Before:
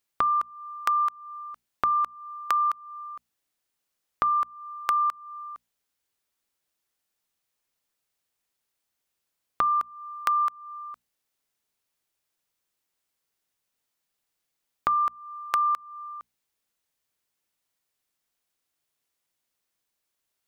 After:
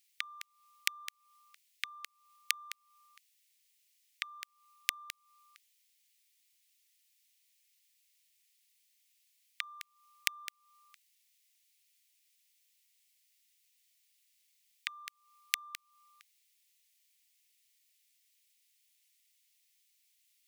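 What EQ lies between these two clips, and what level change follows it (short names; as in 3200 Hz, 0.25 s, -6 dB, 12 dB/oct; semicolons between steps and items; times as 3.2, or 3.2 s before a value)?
steep high-pass 2000 Hz 48 dB/oct; +8.5 dB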